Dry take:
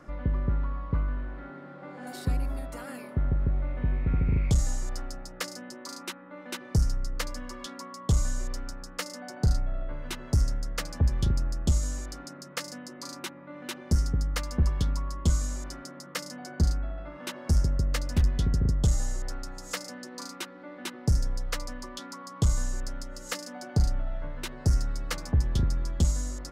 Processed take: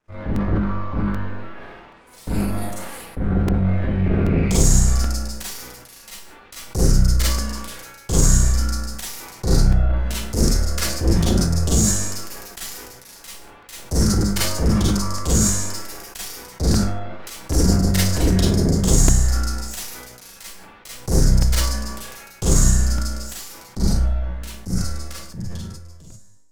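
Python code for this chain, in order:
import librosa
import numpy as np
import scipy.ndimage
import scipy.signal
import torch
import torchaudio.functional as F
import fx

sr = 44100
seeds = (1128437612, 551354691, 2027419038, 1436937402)

y = fx.fade_out_tail(x, sr, length_s=4.08)
y = fx.low_shelf(y, sr, hz=89.0, db=10.5)
y = fx.cheby_harmonics(y, sr, harmonics=(7, 8), levels_db=(-17, -11), full_scale_db=-7.0)
y = fx.transient(y, sr, attack_db=-3, sustain_db=7)
y = fx.high_shelf(y, sr, hz=4000.0, db=10.0)
y = fx.rev_schroeder(y, sr, rt60_s=0.35, comb_ms=33, drr_db=-6.0)
y = fx.buffer_crackle(y, sr, first_s=0.36, period_s=0.78, block=128, kind='repeat')
y = fx.sustainer(y, sr, db_per_s=38.0)
y = y * librosa.db_to_amplitude(-6.0)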